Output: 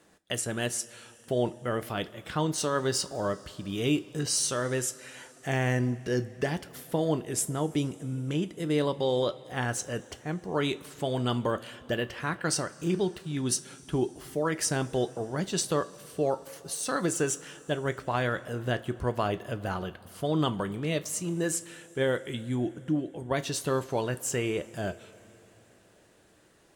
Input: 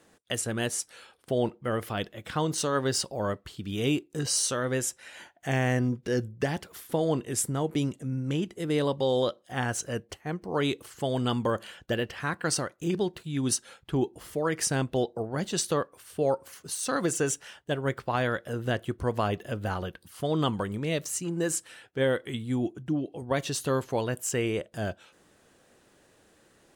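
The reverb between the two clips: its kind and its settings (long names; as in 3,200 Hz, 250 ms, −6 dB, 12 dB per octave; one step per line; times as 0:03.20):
coupled-rooms reverb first 0.23 s, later 4 s, from −20 dB, DRR 10 dB
level −1 dB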